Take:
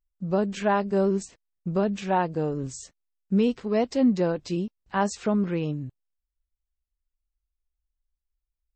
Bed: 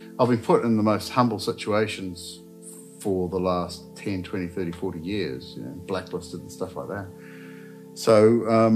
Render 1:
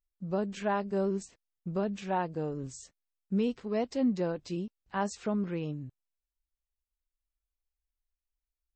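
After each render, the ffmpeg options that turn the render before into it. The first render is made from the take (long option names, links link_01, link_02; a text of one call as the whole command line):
ffmpeg -i in.wav -af "volume=-7dB" out.wav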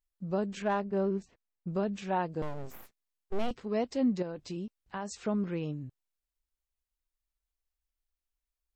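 ffmpeg -i in.wav -filter_complex "[0:a]asettb=1/sr,asplit=3[link_01][link_02][link_03];[link_01]atrim=end=0.624[link_04];[link_02]atrim=start=0.62:end=1.68,asetpts=PTS-STARTPTS,afade=type=in:duration=0.004:curve=qsin,afade=type=out:start_time=1.056:duration=0.004:curve=qsin,adynamicsmooth=sensitivity=4.5:basefreq=2800[link_05];[link_03]atrim=start=1.676[link_06];[link_04][link_05]acrossfade=duration=0.004:curve1=hsin:curve2=qsin[link_07];[link_07][link_06]acrossfade=duration=0.004:curve1=qsin:curve2=hsin,asettb=1/sr,asplit=3[link_08][link_09][link_10];[link_08]atrim=end=2.424[link_11];[link_09]atrim=start=2.42:end=3.51,asetpts=PTS-STARTPTS,afade=type=in:duration=0.004:curve=qsin,afade=type=out:start_time=1.086:duration=0.004:curve=qsin,aeval=exprs='abs(val(0))':channel_layout=same[link_12];[link_10]atrim=start=3.506[link_13];[link_11][link_12]acrossfade=duration=0.004:curve1=hsin:curve2=qsin[link_14];[link_14][link_13]acrossfade=duration=0.004:curve1=qsin:curve2=hsin,asettb=1/sr,asplit=3[link_15][link_16][link_17];[link_15]atrim=end=4.224[link_18];[link_16]atrim=start=4.22:end=5.13,asetpts=PTS-STARTPTS,afade=type=in:duration=0.004:curve=qsin,afade=type=out:start_time=0.906:duration=0.004:curve=qsin,acompressor=threshold=-33dB:ratio=6:attack=3.2:release=140:knee=1:detection=peak[link_19];[link_17]atrim=start=5.126[link_20];[link_18][link_19]acrossfade=duration=0.004:curve1=hsin:curve2=qsin[link_21];[link_21][link_20]acrossfade=duration=0.004:curve1=qsin:curve2=hsin" out.wav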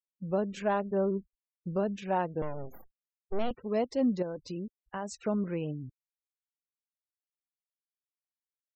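ffmpeg -i in.wav -af "afftfilt=real='re*gte(hypot(re,im),0.00447)':imag='im*gte(hypot(re,im),0.00447)':win_size=1024:overlap=0.75,equalizer=frequency=560:width=2.3:gain=3.5" out.wav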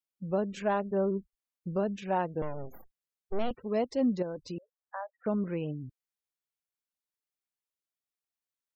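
ffmpeg -i in.wav -filter_complex "[0:a]asettb=1/sr,asplit=3[link_01][link_02][link_03];[link_01]atrim=end=4.584[link_04];[link_02]atrim=start=4.58:end=5.26,asetpts=PTS-STARTPTS,afade=type=in:duration=0.004:curve=qsin,afade=type=out:start_time=0.676:duration=0.004:curve=qsin,asuperpass=centerf=970:order=20:qfactor=0.73[link_05];[link_03]atrim=start=5.256[link_06];[link_04][link_05]acrossfade=duration=0.004:curve1=hsin:curve2=qsin[link_07];[link_07][link_06]acrossfade=duration=0.004:curve1=qsin:curve2=hsin" out.wav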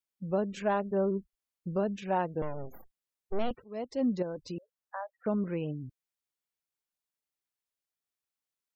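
ffmpeg -i in.wav -filter_complex "[0:a]asplit=2[link_01][link_02];[link_01]atrim=end=3.64,asetpts=PTS-STARTPTS,afade=type=out:start_time=3.636:duration=0.004:curve=hsin:silence=0.0707946[link_03];[link_02]atrim=start=3.64,asetpts=PTS-STARTPTS,afade=type=in:duration=0.67:curve=qsin:silence=0.0707946[link_04];[link_03][link_04]concat=n=2:v=0:a=1" out.wav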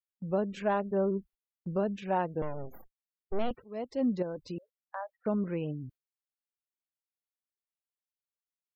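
ffmpeg -i in.wav -af "equalizer=frequency=6700:width_type=o:width=1:gain=-6,agate=range=-12dB:threshold=-52dB:ratio=16:detection=peak" out.wav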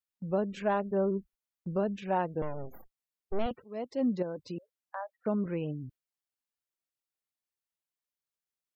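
ffmpeg -i in.wav -filter_complex "[0:a]asettb=1/sr,asplit=3[link_01][link_02][link_03];[link_01]atrim=end=3.464[link_04];[link_02]atrim=start=3.46:end=5.46,asetpts=PTS-STARTPTS,afade=type=in:duration=0.004:curve=qsin,afade=type=out:start_time=1.996:duration=0.004:curve=qsin,highpass=97[link_05];[link_03]atrim=start=5.456[link_06];[link_04][link_05]acrossfade=duration=0.004:curve1=hsin:curve2=qsin[link_07];[link_07][link_06]acrossfade=duration=0.004:curve1=qsin:curve2=hsin" out.wav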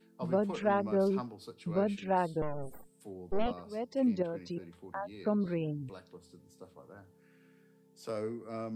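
ffmpeg -i in.wav -i bed.wav -filter_complex "[1:a]volume=-21dB[link_01];[0:a][link_01]amix=inputs=2:normalize=0" out.wav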